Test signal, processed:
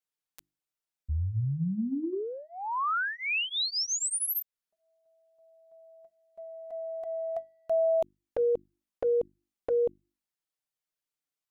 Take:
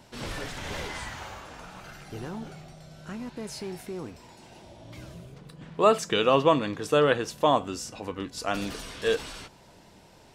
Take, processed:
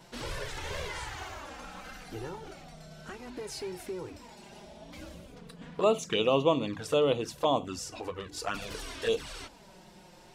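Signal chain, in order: hum notches 50/100/150/200/250/300/350 Hz; in parallel at +1.5 dB: compression 6:1, threshold -37 dBFS; on the sum: touch-sensitive flanger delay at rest 6.6 ms, full sweep at -19 dBFS; trim -3.5 dB

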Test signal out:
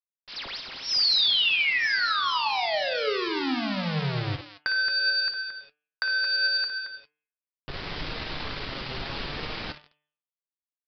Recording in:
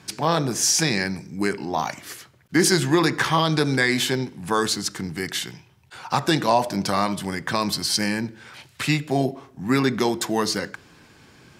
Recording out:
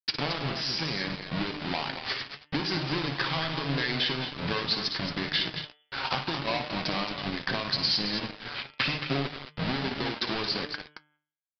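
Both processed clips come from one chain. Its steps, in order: square wave that keeps the level; compression 12:1, threshold -31 dBFS; treble shelf 2.1 kHz +10 dB; feedback echo behind a high-pass 105 ms, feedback 57%, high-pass 3 kHz, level -19.5 dB; level-controlled noise filter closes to 2.8 kHz, open at -22.5 dBFS; on a send: multi-tap echo 57/100/223 ms -9/-18.5/-7.5 dB; on the sum: small samples zeroed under -33 dBFS; resampled via 11.025 kHz; de-hum 149.6 Hz, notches 23; flange 0.73 Hz, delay 6.3 ms, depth 1.4 ms, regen +63%; trim +5.5 dB

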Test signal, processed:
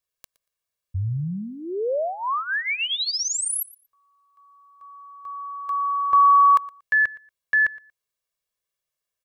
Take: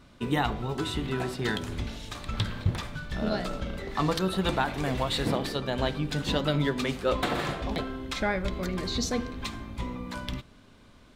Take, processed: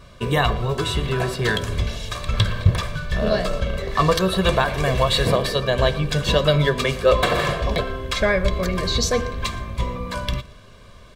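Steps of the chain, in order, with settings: comb 1.8 ms, depth 68%; on a send: feedback delay 117 ms, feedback 18%, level -21 dB; on the sum: trim +7.5 dB

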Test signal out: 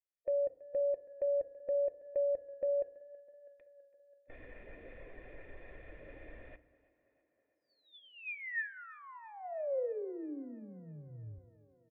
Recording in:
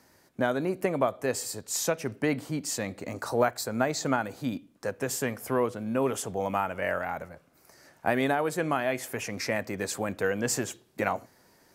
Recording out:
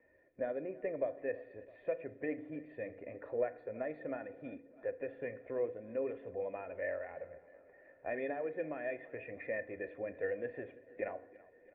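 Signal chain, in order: coarse spectral quantiser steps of 15 dB; bass shelf 70 Hz +11 dB; comb 2.9 ms, depth 37%; in parallel at 0 dB: compression, threshold -40 dBFS; on the sum: cascade formant filter e; on a send: tape echo 328 ms, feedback 70%, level -19.5 dB, low-pass 3.3 kHz; on the sum: FDN reverb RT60 0.66 s, low-frequency decay 1.35×, high-frequency decay 0.55×, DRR 12.5 dB; trim -2 dB

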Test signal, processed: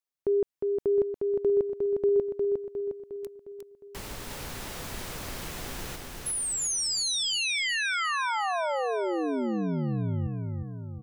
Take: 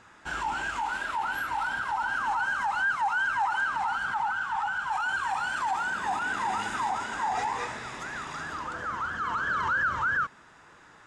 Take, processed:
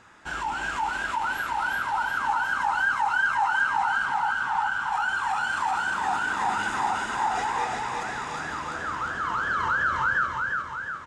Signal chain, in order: feedback delay 357 ms, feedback 55%, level -3.5 dB; trim +1 dB

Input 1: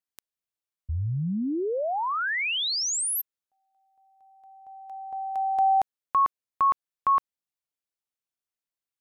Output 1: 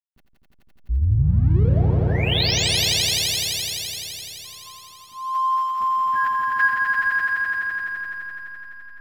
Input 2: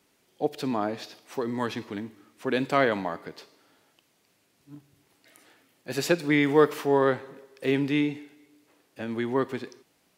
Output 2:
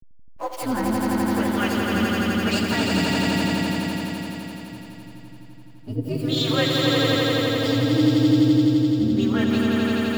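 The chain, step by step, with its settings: frequency axis rescaled in octaves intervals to 127%; treble shelf 2.2 kHz +11 dB; band-stop 6.2 kHz, Q 16; in parallel at 0 dB: compressor with a negative ratio -27 dBFS, ratio -0.5; on the sum: hysteresis with a dead band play -33.5 dBFS; harmonic tremolo 1 Hz, depth 100%, crossover 460 Hz; graphic EQ 125/250/500/8000 Hz +4/+5/-4/-9 dB; on a send: echo with a slow build-up 85 ms, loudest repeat 5, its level -3 dB

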